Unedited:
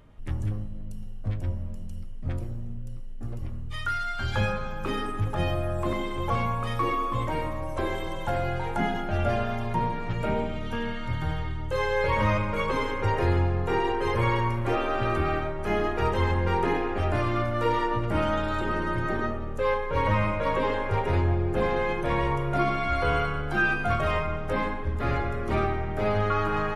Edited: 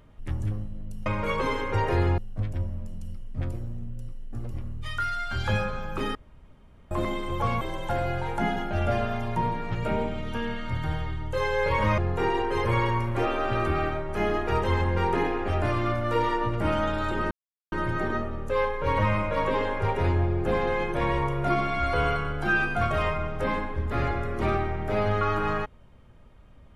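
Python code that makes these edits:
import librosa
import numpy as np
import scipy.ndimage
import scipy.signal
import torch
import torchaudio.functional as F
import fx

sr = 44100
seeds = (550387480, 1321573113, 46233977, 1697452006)

y = fx.edit(x, sr, fx.room_tone_fill(start_s=5.03, length_s=0.76),
    fx.cut(start_s=6.49, length_s=1.5),
    fx.move(start_s=12.36, length_s=1.12, to_s=1.06),
    fx.insert_silence(at_s=18.81, length_s=0.41), tone=tone)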